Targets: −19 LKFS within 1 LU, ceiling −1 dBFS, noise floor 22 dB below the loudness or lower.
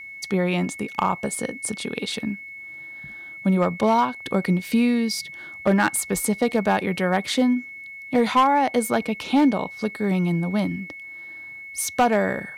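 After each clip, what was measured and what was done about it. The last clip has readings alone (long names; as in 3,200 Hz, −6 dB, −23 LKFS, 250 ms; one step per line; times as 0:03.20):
share of clipped samples 0.4%; peaks flattened at −11.5 dBFS; interfering tone 2,200 Hz; level of the tone −36 dBFS; integrated loudness −23.0 LKFS; sample peak −11.5 dBFS; target loudness −19.0 LKFS
→ clipped peaks rebuilt −11.5 dBFS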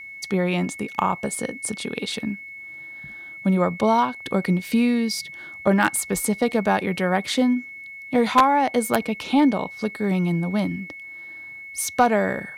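share of clipped samples 0.0%; interfering tone 2,200 Hz; level of the tone −36 dBFS
→ notch filter 2,200 Hz, Q 30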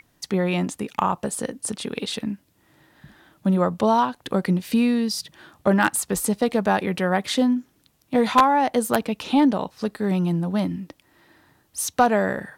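interfering tone none found; integrated loudness −22.5 LKFS; sample peak −2.5 dBFS; target loudness −19.0 LKFS
→ level +3.5 dB
brickwall limiter −1 dBFS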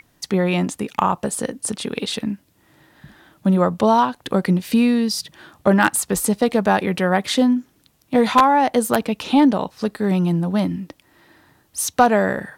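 integrated loudness −19.5 LKFS; sample peak −1.0 dBFS; background noise floor −61 dBFS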